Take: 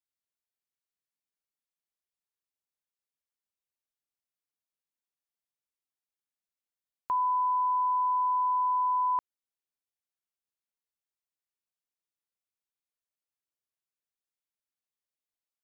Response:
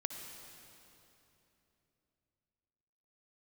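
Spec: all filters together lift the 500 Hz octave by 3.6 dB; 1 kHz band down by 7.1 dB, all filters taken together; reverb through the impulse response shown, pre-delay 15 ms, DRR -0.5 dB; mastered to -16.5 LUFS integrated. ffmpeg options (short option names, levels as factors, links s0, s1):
-filter_complex "[0:a]equalizer=f=500:t=o:g=7.5,equalizer=f=1000:t=o:g=-8.5,asplit=2[s0][s1];[1:a]atrim=start_sample=2205,adelay=15[s2];[s1][s2]afir=irnorm=-1:irlink=0,volume=1.06[s3];[s0][s3]amix=inputs=2:normalize=0,volume=5.01"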